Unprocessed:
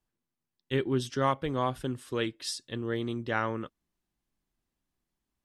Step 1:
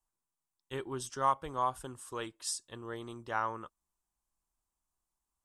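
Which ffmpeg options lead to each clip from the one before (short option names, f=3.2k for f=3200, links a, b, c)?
-af "equalizer=f=125:t=o:w=1:g=-8,equalizer=f=250:t=o:w=1:g=-9,equalizer=f=500:t=o:w=1:g=-5,equalizer=f=1k:t=o:w=1:g=8,equalizer=f=2k:t=o:w=1:g=-8,equalizer=f=4k:t=o:w=1:g=-7,equalizer=f=8k:t=o:w=1:g=9,volume=-3dB"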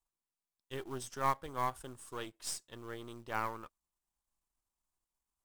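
-af "aeval=exprs='if(lt(val(0),0),0.447*val(0),val(0))':c=same,acrusher=bits=5:mode=log:mix=0:aa=0.000001,volume=-1dB"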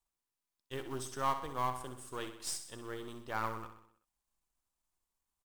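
-filter_complex "[0:a]asoftclip=type=tanh:threshold=-22.5dB,asplit=2[a][b];[b]aecho=0:1:63|126|189|252|315|378:0.316|0.177|0.0992|0.0555|0.0311|0.0174[c];[a][c]amix=inputs=2:normalize=0,volume=1dB"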